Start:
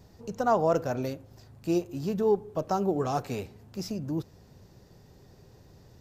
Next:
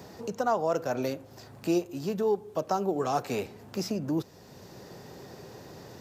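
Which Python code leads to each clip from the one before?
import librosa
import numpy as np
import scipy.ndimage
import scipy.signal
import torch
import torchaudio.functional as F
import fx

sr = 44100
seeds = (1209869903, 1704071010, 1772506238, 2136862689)

y = fx.rider(x, sr, range_db=4, speed_s=0.5)
y = fx.highpass(y, sr, hz=300.0, slope=6)
y = fx.band_squash(y, sr, depth_pct=40)
y = F.gain(torch.from_numpy(y), 2.0).numpy()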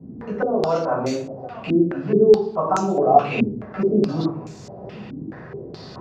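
y = x + 10.0 ** (-17.0 / 20.0) * np.pad(x, (int(1029 * sr / 1000.0), 0))[:len(x)]
y = fx.room_shoebox(y, sr, seeds[0], volume_m3=660.0, walls='furnished', distance_m=6.9)
y = fx.filter_held_lowpass(y, sr, hz=4.7, low_hz=260.0, high_hz=7100.0)
y = F.gain(torch.from_numpy(y), -4.0).numpy()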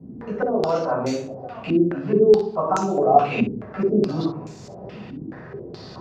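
y = fx.room_early_taps(x, sr, ms=(54, 65), db=(-15.5, -14.5))
y = F.gain(torch.from_numpy(y), -1.0).numpy()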